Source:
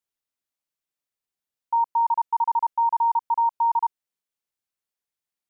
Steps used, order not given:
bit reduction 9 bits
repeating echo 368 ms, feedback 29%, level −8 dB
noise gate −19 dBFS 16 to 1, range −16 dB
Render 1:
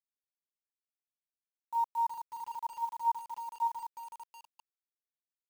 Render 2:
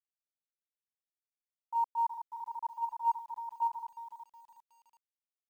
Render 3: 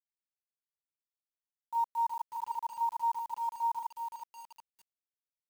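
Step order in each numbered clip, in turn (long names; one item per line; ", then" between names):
repeating echo, then noise gate, then bit reduction
repeating echo, then bit reduction, then noise gate
noise gate, then repeating echo, then bit reduction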